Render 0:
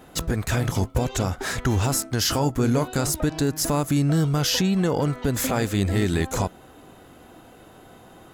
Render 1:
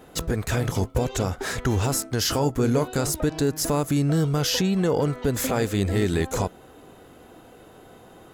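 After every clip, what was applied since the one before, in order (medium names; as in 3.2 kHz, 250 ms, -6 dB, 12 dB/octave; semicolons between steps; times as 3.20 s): peaking EQ 450 Hz +5 dB 0.48 oct; trim -1.5 dB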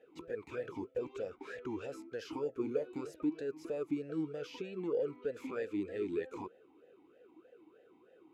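talking filter e-u 3.2 Hz; trim -4.5 dB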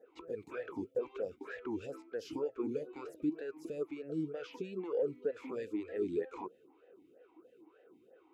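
lamp-driven phase shifter 2.1 Hz; trim +2.5 dB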